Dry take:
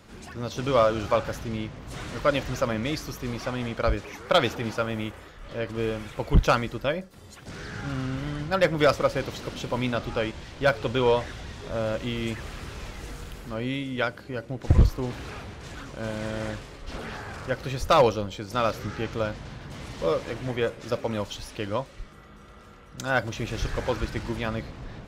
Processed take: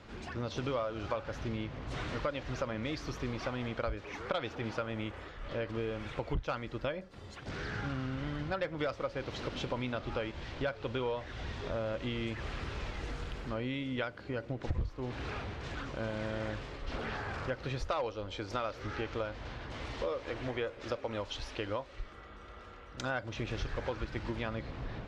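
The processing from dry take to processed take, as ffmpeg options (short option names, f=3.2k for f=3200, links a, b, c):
-filter_complex "[0:a]asettb=1/sr,asplit=3[a][b][c];[a]atrim=end=17.814[d];[b]atrim=start=17.81:end=23.04,asetpts=PTS-STARTPTS,afade=t=in:d=0.004:c=qsin,afade=t=out:st=5.226:d=0.004:c=qsin,equalizer=f=160:w=1.5:g=-9[e];[c]atrim=start=23.036[f];[d][e]acrossfade=d=0.004:c1=hsin:c2=qsin[g];[g][f]acrossfade=d=0.004:c1=qsin:c2=hsin,lowpass=4.3k,equalizer=f=180:w=2.3:g=-4,acompressor=threshold=-33dB:ratio=5"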